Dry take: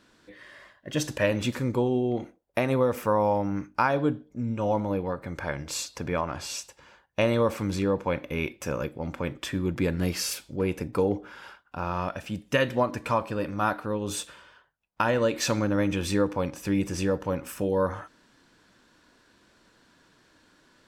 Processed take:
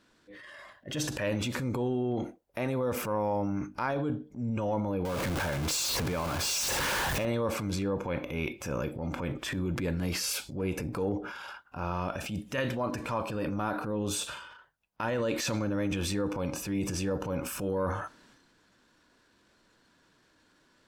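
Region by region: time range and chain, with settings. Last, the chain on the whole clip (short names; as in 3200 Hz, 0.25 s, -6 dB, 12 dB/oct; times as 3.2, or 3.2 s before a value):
5.05–7.25 zero-crossing step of -26 dBFS + compressor, threshold -29 dBFS
13.47–14.05 bell 300 Hz +4 dB 2.8 oct + compressor 1.5:1, threshold -28 dBFS
whole clip: spectral noise reduction 8 dB; compressor 3:1, threshold -32 dBFS; transient shaper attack -8 dB, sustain +7 dB; gain +3 dB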